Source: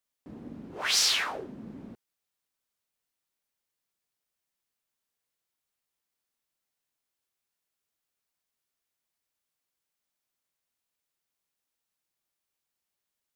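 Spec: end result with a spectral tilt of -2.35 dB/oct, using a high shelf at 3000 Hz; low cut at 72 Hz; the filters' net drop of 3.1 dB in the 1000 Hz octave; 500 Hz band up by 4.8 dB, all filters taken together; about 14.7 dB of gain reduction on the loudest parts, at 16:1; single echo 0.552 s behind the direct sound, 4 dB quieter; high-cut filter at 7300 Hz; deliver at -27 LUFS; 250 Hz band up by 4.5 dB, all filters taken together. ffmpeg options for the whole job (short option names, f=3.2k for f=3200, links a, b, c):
-af "highpass=72,lowpass=7.3k,equalizer=f=250:t=o:g=4,equalizer=f=500:t=o:g=6.5,equalizer=f=1k:t=o:g=-7.5,highshelf=f=3k:g=8.5,acompressor=threshold=-30dB:ratio=16,aecho=1:1:552:0.631,volume=7.5dB"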